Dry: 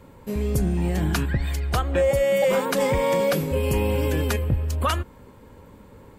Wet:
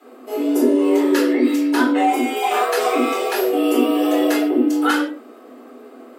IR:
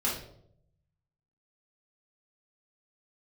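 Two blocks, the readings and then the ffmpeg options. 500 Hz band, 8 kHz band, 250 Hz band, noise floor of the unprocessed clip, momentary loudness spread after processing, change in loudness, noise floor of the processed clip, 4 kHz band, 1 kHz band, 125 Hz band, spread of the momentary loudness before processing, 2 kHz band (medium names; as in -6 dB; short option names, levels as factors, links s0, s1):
+3.0 dB, +3.0 dB, +12.0 dB, -48 dBFS, 5 LU, +5.5 dB, -43 dBFS, +5.0 dB, +9.0 dB, under -30 dB, 6 LU, +6.0 dB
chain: -filter_complex "[0:a]afreqshift=220,bandreject=f=780:w=12[s0];[1:a]atrim=start_sample=2205,afade=t=out:st=0.22:d=0.01,atrim=end_sample=10143[s1];[s0][s1]afir=irnorm=-1:irlink=0,volume=0.75"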